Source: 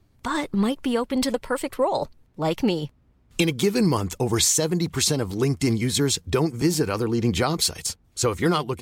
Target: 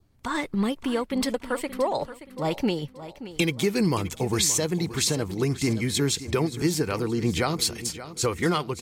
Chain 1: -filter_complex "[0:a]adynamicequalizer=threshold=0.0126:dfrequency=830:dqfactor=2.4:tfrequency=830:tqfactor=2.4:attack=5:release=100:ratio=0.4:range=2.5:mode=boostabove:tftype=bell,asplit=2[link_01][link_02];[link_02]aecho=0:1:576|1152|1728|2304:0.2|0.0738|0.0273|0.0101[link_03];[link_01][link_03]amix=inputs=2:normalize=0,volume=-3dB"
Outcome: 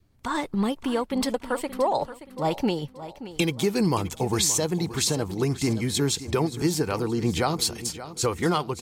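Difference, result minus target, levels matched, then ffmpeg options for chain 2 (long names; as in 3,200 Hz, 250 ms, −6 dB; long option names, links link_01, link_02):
1,000 Hz band +2.5 dB
-filter_complex "[0:a]adynamicequalizer=threshold=0.0126:dfrequency=2100:dqfactor=2.4:tfrequency=2100:tqfactor=2.4:attack=5:release=100:ratio=0.4:range=2.5:mode=boostabove:tftype=bell,asplit=2[link_01][link_02];[link_02]aecho=0:1:576|1152|1728|2304:0.2|0.0738|0.0273|0.0101[link_03];[link_01][link_03]amix=inputs=2:normalize=0,volume=-3dB"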